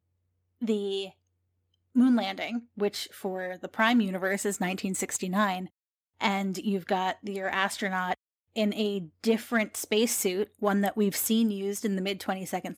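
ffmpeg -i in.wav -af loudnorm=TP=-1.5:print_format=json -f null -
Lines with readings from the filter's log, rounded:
"input_i" : "-28.6",
"input_tp" : "-8.8",
"input_lra" : "2.1",
"input_thresh" : "-38.7",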